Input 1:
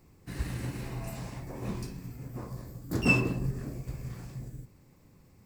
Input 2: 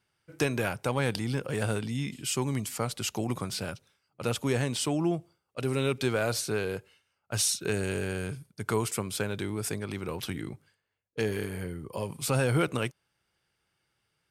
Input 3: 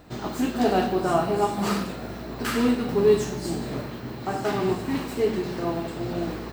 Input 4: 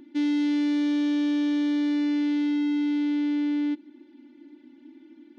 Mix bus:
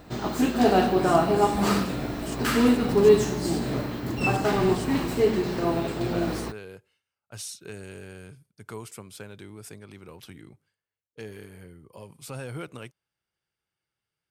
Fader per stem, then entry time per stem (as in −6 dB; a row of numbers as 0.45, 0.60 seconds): −3.0, −10.5, +2.0, −14.0 decibels; 1.15, 0.00, 0.00, 0.80 seconds